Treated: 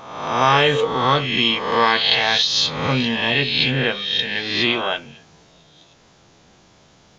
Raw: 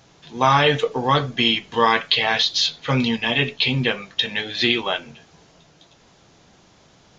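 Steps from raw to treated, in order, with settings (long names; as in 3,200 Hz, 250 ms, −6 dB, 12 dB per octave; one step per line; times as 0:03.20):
peak hold with a rise ahead of every peak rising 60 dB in 0.99 s
0:03.70–0:04.91: high-shelf EQ 6,100 Hz −5.5 dB
level −1.5 dB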